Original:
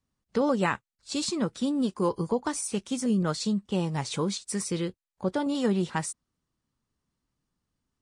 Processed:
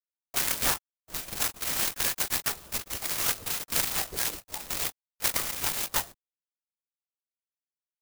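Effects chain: notches 50/100/150/200/250/300/350/400/450 Hz; harmonic-percussive split percussive +9 dB; dynamic EQ 420 Hz, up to -5 dB, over -36 dBFS, Q 1.8; vocal rider within 4 dB 0.5 s; flange 0.62 Hz, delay 6 ms, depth 7 ms, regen +53%; requantised 6-bit, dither none; inverted band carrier 2700 Hz; LPC vocoder at 8 kHz whisper; clock jitter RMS 0.15 ms

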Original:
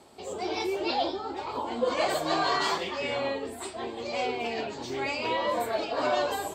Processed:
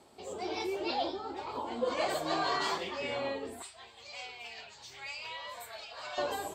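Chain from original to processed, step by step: 3.62–6.18 passive tone stack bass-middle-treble 10-0-10; gain -5 dB

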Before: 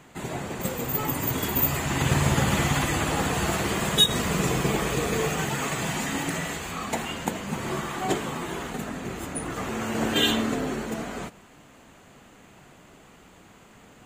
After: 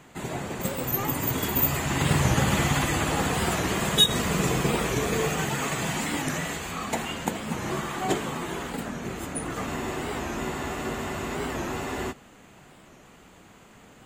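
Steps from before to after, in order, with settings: spectral freeze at 9.69, 2.41 s; record warp 45 rpm, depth 160 cents

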